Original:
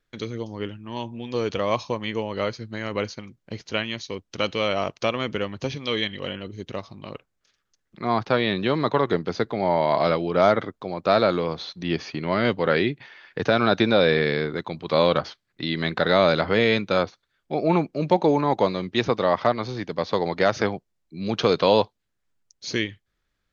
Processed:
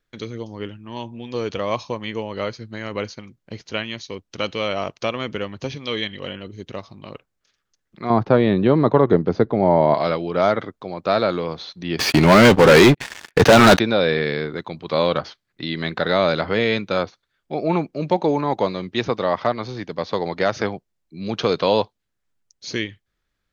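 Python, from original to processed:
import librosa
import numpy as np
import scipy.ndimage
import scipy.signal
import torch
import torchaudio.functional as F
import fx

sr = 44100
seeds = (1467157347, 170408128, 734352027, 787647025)

y = fx.tilt_shelf(x, sr, db=9.0, hz=1400.0, at=(8.1, 9.94))
y = fx.leveller(y, sr, passes=5, at=(11.99, 13.79))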